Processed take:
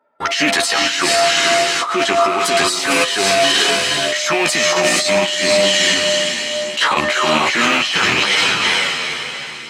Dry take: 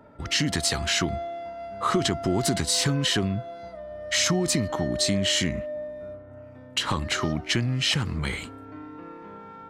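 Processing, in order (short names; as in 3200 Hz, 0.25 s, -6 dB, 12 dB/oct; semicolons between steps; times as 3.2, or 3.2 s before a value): rattling part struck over -28 dBFS, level -23 dBFS; gate -35 dBFS, range -31 dB; HPF 610 Hz 12 dB/oct; high shelf 3400 Hz -6 dB; diffused feedback echo 0.454 s, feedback 41%, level -5.5 dB; negative-ratio compressor -35 dBFS, ratio -1; on a send at -18 dB: reverb RT60 0.50 s, pre-delay 3 ms; on the sum: chorus voices 2, 0.36 Hz, delay 12 ms, depth 1.9 ms; maximiser +26.5 dB; gain -3.5 dB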